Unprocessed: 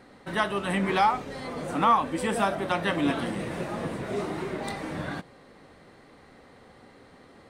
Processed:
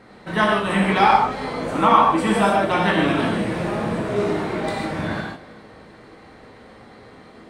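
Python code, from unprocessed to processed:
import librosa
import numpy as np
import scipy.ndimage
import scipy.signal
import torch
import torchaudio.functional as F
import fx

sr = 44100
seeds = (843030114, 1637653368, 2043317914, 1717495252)

y = fx.high_shelf(x, sr, hz=7300.0, db=-8.5)
y = fx.doubler(y, sr, ms=19.0, db=-11)
y = y + 10.0 ** (-20.5 / 20.0) * np.pad(y, (int(319 * sr / 1000.0), 0))[:len(y)]
y = fx.rev_gated(y, sr, seeds[0], gate_ms=180, shape='flat', drr_db=-3.0)
y = y * 10.0 ** (3.5 / 20.0)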